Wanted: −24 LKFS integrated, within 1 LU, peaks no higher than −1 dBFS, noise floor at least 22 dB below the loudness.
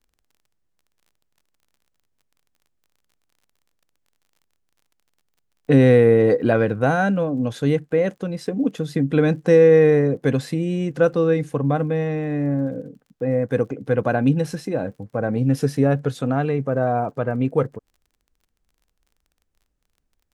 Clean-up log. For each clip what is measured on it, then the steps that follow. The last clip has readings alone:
crackle rate 33 per second; integrated loudness −20.0 LKFS; sample peak −3.5 dBFS; target loudness −24.0 LKFS
→ click removal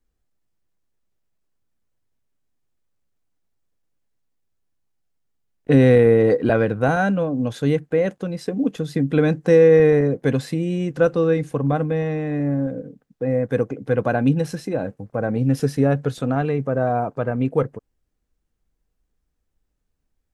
crackle rate 0.049 per second; integrated loudness −20.0 LKFS; sample peak −3.5 dBFS; target loudness −24.0 LKFS
→ level −4 dB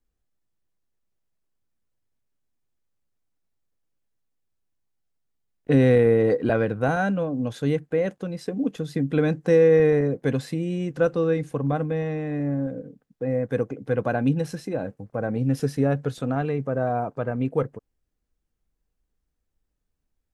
integrated loudness −24.0 LKFS; sample peak −7.5 dBFS; background noise floor −78 dBFS

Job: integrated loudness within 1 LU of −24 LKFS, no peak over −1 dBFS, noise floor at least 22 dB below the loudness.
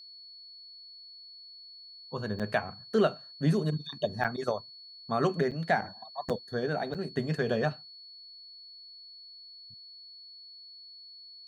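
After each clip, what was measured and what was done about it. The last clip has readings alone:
number of dropouts 5; longest dropout 6.9 ms; interfering tone 4,400 Hz; level of the tone −47 dBFS; integrated loudness −31.5 LKFS; sample peak −13.0 dBFS; target loudness −24.0 LKFS
→ repair the gap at 0:02.39/0:04.24/0:05.51/0:06.29/0:06.94, 6.9 ms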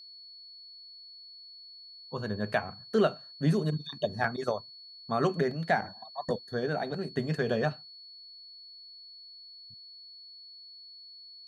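number of dropouts 0; interfering tone 4,400 Hz; level of the tone −47 dBFS
→ notch filter 4,400 Hz, Q 30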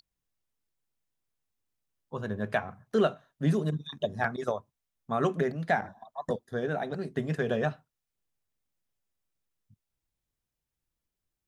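interfering tone none found; integrated loudness −31.5 LKFS; sample peak −12.5 dBFS; target loudness −24.0 LKFS
→ level +7.5 dB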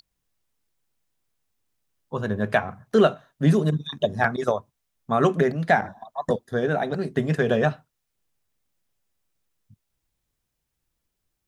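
integrated loudness −24.0 LKFS; sample peak −5.0 dBFS; background noise floor −79 dBFS

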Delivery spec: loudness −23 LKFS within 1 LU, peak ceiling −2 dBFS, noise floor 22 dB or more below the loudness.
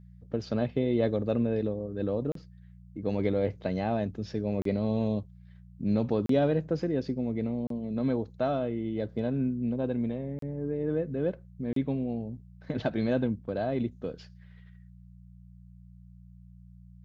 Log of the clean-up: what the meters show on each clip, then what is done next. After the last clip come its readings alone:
number of dropouts 6; longest dropout 33 ms; mains hum 60 Hz; hum harmonics up to 180 Hz; level of the hum −50 dBFS; integrated loudness −30.5 LKFS; sample peak −14.0 dBFS; target loudness −23.0 LKFS
→ repair the gap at 0:02.32/0:04.62/0:06.26/0:07.67/0:10.39/0:11.73, 33 ms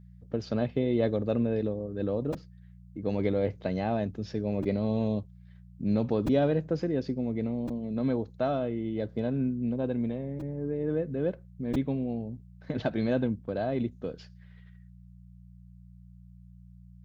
number of dropouts 0; mains hum 60 Hz; hum harmonics up to 180 Hz; level of the hum −50 dBFS
→ hum removal 60 Hz, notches 3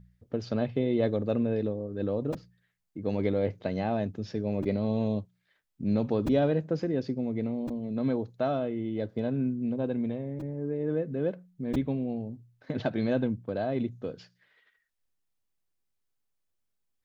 mains hum none found; integrated loudness −30.5 LKFS; sample peak −14.0 dBFS; target loudness −23.0 LKFS
→ level +7.5 dB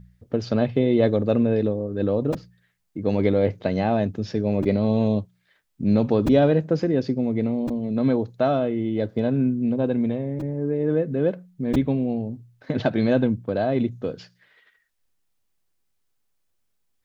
integrated loudness −23.0 LKFS; sample peak −6.5 dBFS; background noise floor −71 dBFS

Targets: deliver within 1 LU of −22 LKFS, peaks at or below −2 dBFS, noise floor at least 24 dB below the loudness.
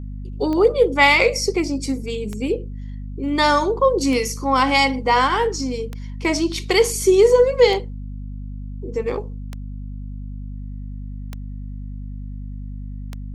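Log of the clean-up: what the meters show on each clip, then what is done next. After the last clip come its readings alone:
number of clicks 8; mains hum 50 Hz; hum harmonics up to 250 Hz; level of the hum −28 dBFS; integrated loudness −18.5 LKFS; sample peak −2.0 dBFS; target loudness −22.0 LKFS
→ click removal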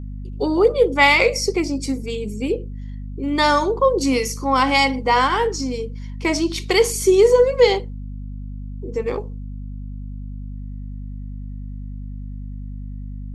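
number of clicks 0; mains hum 50 Hz; hum harmonics up to 250 Hz; level of the hum −28 dBFS
→ mains-hum notches 50/100/150/200/250 Hz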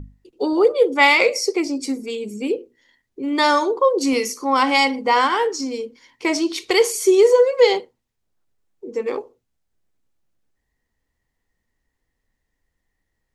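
mains hum none found; integrated loudness −18.5 LKFS; sample peak −2.5 dBFS; target loudness −22.0 LKFS
→ level −3.5 dB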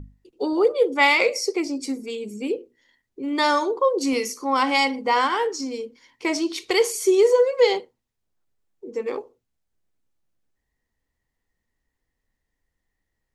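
integrated loudness −22.0 LKFS; sample peak −6.0 dBFS; background noise floor −80 dBFS

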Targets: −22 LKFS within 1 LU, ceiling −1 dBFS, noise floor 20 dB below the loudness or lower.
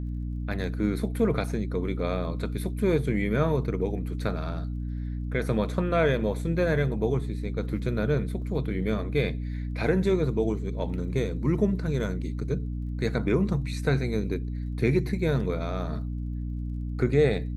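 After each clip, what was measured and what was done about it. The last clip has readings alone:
crackle rate 31 per second; mains hum 60 Hz; hum harmonics up to 300 Hz; level of the hum −29 dBFS; integrated loudness −28.0 LKFS; sample peak −10.0 dBFS; target loudness −22.0 LKFS
→ click removal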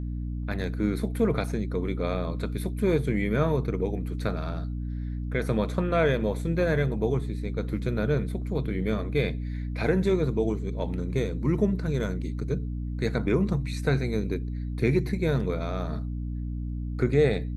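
crackle rate 0.11 per second; mains hum 60 Hz; hum harmonics up to 300 Hz; level of the hum −29 dBFS
→ mains-hum notches 60/120/180/240/300 Hz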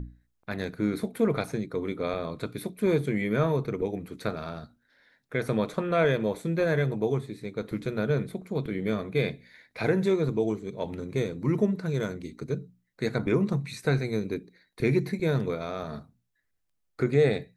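mains hum none found; integrated loudness −29.0 LKFS; sample peak −10.5 dBFS; target loudness −22.0 LKFS
→ level +7 dB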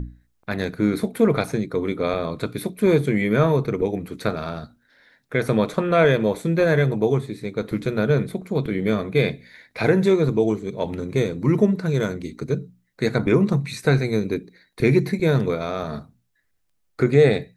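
integrated loudness −22.0 LKFS; sample peak −3.5 dBFS; background noise floor −68 dBFS

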